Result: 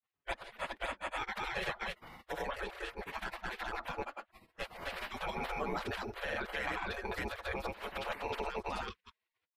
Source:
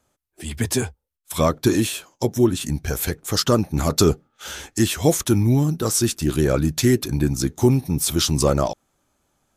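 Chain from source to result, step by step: grains, grains 19/s, spray 0.359 s, pitch spread up and down by 0 st; comb 7.1 ms, depth 94%; limiter -13 dBFS, peak gain reduction 12 dB; spectral gate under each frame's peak -25 dB weak; air absorption 490 m; gain +8 dB

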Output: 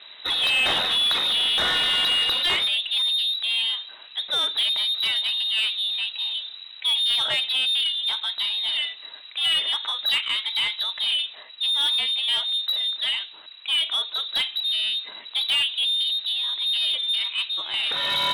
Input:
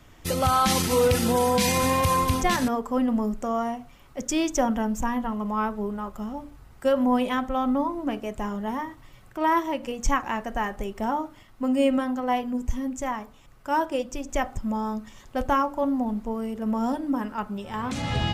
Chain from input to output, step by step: low-pass opened by the level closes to 2800 Hz, open at -22 dBFS; inverted band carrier 3900 Hz; overdrive pedal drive 20 dB, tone 1400 Hz, clips at -7.5 dBFS

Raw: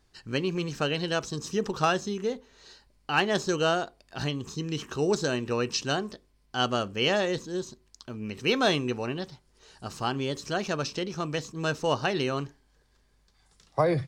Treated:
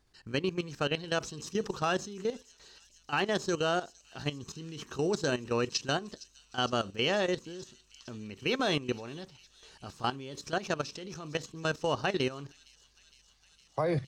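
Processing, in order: level quantiser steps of 14 dB; on a send: thin delay 0.461 s, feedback 79%, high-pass 5200 Hz, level -14 dB

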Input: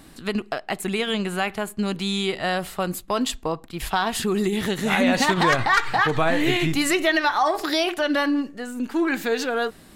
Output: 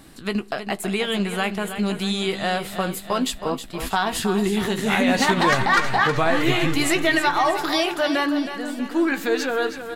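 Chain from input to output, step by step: doubler 15 ms -10.5 dB; on a send: feedback echo 0.318 s, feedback 51%, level -10 dB

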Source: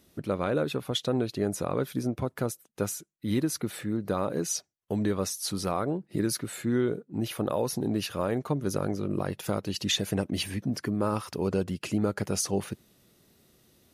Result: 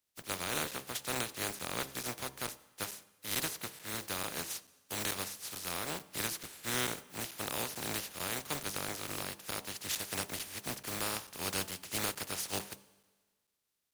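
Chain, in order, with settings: spectral contrast lowered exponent 0.22; de-hum 66.88 Hz, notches 17; on a send at -17 dB: reverb RT60 2.3 s, pre-delay 3 ms; on the sum: crackling interface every 0.44 s, samples 256, zero, from 0.71; three-band expander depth 40%; gain -8.5 dB

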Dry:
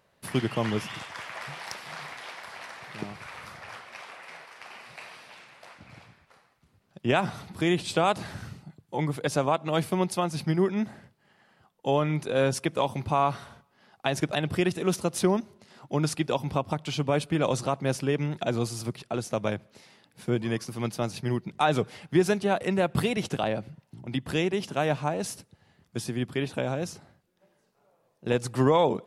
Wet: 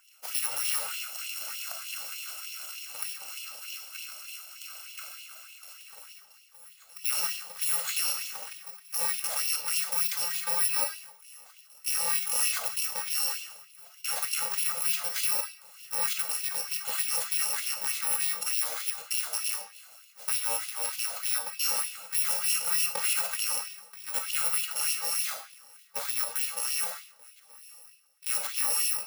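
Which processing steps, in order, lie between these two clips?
FFT order left unsorted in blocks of 128 samples; limiter -19.5 dBFS, peak gain reduction 11.5 dB; reverse echo 1.072 s -23.5 dB; reverb RT60 0.55 s, pre-delay 4 ms, DRR 2.5 dB; LFO high-pass sine 3.3 Hz 650–2900 Hz

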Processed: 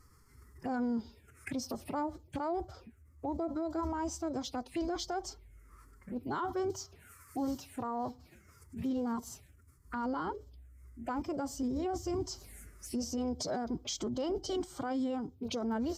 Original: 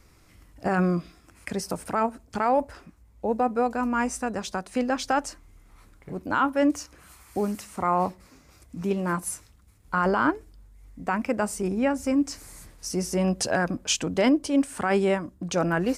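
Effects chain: envelope phaser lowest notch 460 Hz, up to 2000 Hz, full sweep at -27 dBFS; formant-preserving pitch shift +5 st; limiter -24 dBFS, peak gain reduction 12 dB; gain -3.5 dB

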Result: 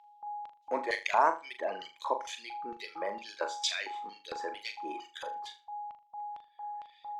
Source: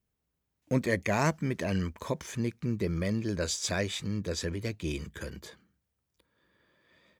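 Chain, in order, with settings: HPF 290 Hz 24 dB/oct; whine 830 Hz -46 dBFS; LFO band-pass square 2.2 Hz 910–3400 Hz; reverb removal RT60 2 s; on a send: flutter echo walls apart 6.8 m, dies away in 0.28 s; on the sum: gain +9 dB

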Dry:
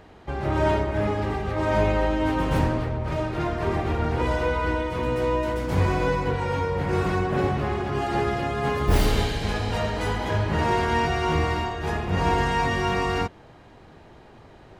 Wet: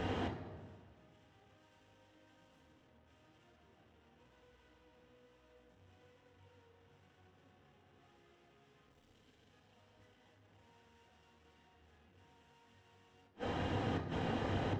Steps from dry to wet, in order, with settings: 1.12–3.56 high shelf 2500 Hz +9.5 dB; hard clip -36.5 dBFS, distortion -3 dB; flipped gate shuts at -37 dBFS, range -41 dB; flange 1.1 Hz, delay 0.1 ms, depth 8.5 ms, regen +70%; reverb RT60 1.6 s, pre-delay 3 ms, DRR 2.5 dB; gain +7.5 dB

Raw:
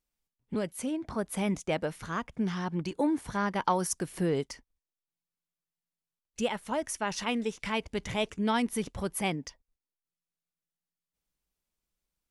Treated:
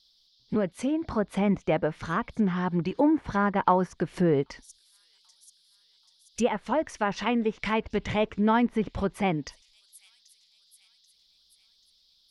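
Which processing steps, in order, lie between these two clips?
band noise 3300–5300 Hz -70 dBFS; thin delay 0.785 s, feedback 50%, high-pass 4500 Hz, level -21 dB; treble ducked by the level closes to 1900 Hz, closed at -27.5 dBFS; gain +5.5 dB

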